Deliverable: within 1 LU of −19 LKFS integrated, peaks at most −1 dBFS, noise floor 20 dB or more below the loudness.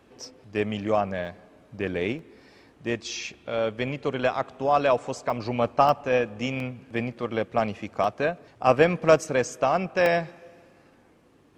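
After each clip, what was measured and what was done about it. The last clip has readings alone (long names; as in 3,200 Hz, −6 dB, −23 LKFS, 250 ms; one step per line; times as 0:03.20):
number of dropouts 7; longest dropout 1.7 ms; integrated loudness −26.0 LKFS; sample peak −4.5 dBFS; target loudness −19.0 LKFS
→ repair the gap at 0:01.25/0:02.19/0:05.30/0:05.89/0:06.60/0:08.04/0:10.06, 1.7 ms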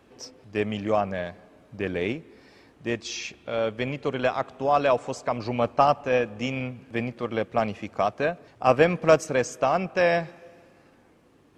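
number of dropouts 0; integrated loudness −26.0 LKFS; sample peak −4.5 dBFS; target loudness −19.0 LKFS
→ level +7 dB
brickwall limiter −1 dBFS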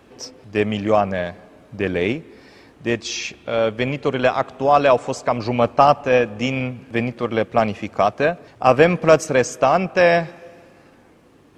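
integrated loudness −19.0 LKFS; sample peak −1.0 dBFS; background noise floor −51 dBFS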